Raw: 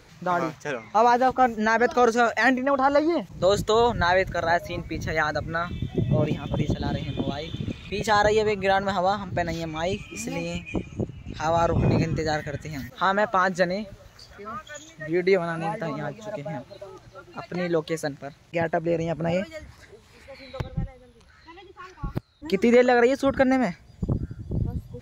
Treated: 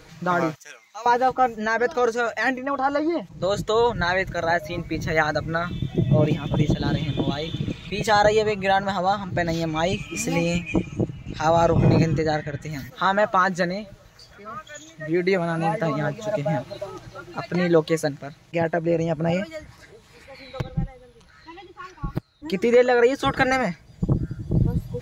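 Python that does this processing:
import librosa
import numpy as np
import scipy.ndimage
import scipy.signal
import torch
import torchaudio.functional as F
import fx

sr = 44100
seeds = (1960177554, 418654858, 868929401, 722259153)

y = fx.differentiator(x, sr, at=(0.55, 1.06))
y = fx.high_shelf(y, sr, hz=9300.0, db=-6.5, at=(2.96, 3.96))
y = fx.air_absorb(y, sr, metres=91.0, at=(12.18, 12.62))
y = fx.spec_clip(y, sr, under_db=17, at=(23.21, 23.61), fade=0.02)
y = y + 0.42 * np.pad(y, (int(6.3 * sr / 1000.0), 0))[:len(y)]
y = fx.rider(y, sr, range_db=10, speed_s=2.0)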